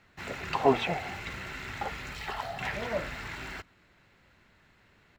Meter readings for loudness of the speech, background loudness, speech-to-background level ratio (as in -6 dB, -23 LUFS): -31.5 LUFS, -38.0 LUFS, 6.5 dB